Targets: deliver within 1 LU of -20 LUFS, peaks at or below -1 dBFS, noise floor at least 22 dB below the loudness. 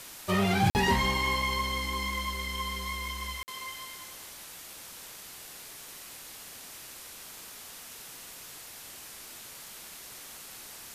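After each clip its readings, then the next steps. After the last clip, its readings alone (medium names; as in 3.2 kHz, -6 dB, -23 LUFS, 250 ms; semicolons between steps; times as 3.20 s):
dropouts 2; longest dropout 49 ms; noise floor -46 dBFS; noise floor target -56 dBFS; loudness -33.5 LUFS; peak level -14.0 dBFS; loudness target -20.0 LUFS
-> interpolate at 0.70/3.43 s, 49 ms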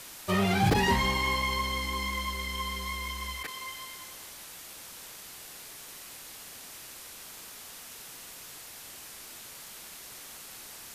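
dropouts 0; noise floor -46 dBFS; noise floor target -56 dBFS
-> noise reduction 10 dB, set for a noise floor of -46 dBFS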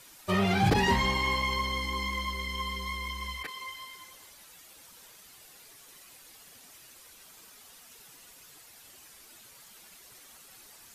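noise floor -54 dBFS; loudness -29.5 LUFS; peak level -11.0 dBFS; loudness target -20.0 LUFS
-> trim +9.5 dB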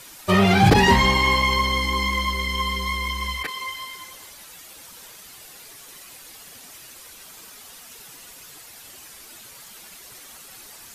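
loudness -20.0 LUFS; peak level -1.5 dBFS; noise floor -44 dBFS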